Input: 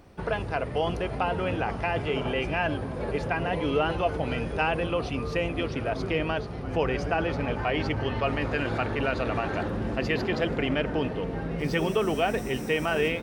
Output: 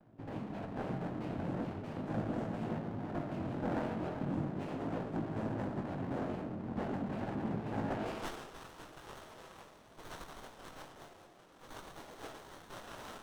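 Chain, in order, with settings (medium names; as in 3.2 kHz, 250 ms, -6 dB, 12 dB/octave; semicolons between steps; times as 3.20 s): band-pass sweep 220 Hz -> 4.9 kHz, 7.81–8.38 s; noise-vocoded speech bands 4; chorus 0.39 Hz, delay 18 ms, depth 4.9 ms; on a send at -3.5 dB: reverberation RT60 1.1 s, pre-delay 10 ms; on the sum: sliding maximum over 17 samples; trim +1.5 dB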